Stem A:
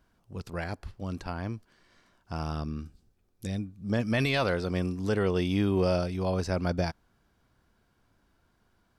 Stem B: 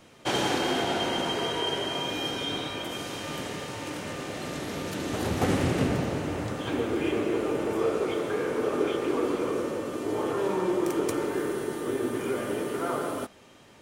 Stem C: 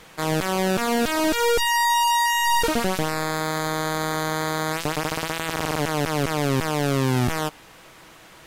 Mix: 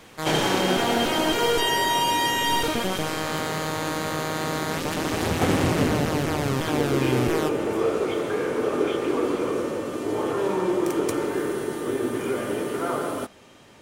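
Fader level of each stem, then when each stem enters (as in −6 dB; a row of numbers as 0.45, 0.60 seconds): muted, +3.0 dB, −4.0 dB; muted, 0.00 s, 0.00 s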